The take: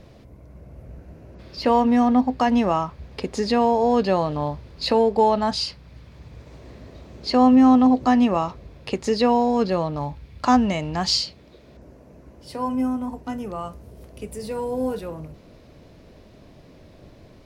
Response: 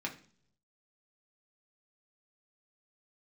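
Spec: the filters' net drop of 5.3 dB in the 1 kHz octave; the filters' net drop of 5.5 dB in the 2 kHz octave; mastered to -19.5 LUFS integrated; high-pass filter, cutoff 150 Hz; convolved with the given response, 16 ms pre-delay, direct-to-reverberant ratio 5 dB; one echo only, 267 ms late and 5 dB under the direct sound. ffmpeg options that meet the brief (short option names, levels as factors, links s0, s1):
-filter_complex "[0:a]highpass=150,equalizer=f=1000:t=o:g=-6.5,equalizer=f=2000:t=o:g=-5,aecho=1:1:267:0.562,asplit=2[s0][s1];[1:a]atrim=start_sample=2205,adelay=16[s2];[s1][s2]afir=irnorm=-1:irlink=0,volume=0.422[s3];[s0][s3]amix=inputs=2:normalize=0,volume=0.944"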